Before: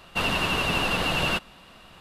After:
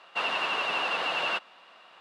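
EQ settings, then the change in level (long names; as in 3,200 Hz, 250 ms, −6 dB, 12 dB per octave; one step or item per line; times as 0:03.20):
band-pass filter 630–6,900 Hz
high-shelf EQ 4,000 Hz −10.5 dB
0.0 dB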